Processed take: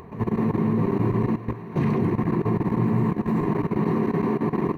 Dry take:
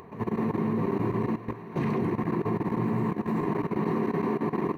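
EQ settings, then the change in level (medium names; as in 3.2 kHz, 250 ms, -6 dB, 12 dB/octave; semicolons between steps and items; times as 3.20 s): bass shelf 140 Hz +10.5 dB; +2.0 dB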